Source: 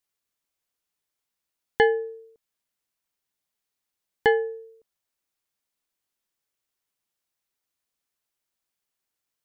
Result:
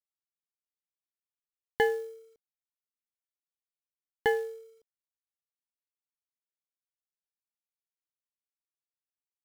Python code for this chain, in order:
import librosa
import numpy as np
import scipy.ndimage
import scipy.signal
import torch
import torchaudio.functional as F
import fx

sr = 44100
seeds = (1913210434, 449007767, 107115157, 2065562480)

y = fx.quant_companded(x, sr, bits=6)
y = F.gain(torch.from_numpy(y), -6.5).numpy()